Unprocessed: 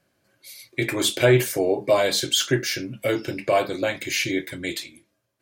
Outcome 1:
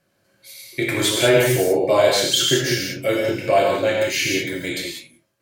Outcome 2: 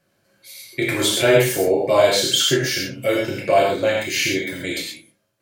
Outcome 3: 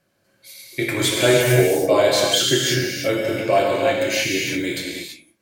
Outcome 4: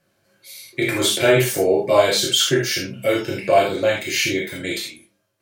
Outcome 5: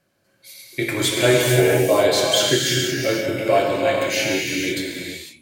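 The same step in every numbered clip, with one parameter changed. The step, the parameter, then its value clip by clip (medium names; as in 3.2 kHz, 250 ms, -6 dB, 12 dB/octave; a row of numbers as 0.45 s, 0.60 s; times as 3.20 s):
gated-style reverb, gate: 220 ms, 150 ms, 360 ms, 100 ms, 530 ms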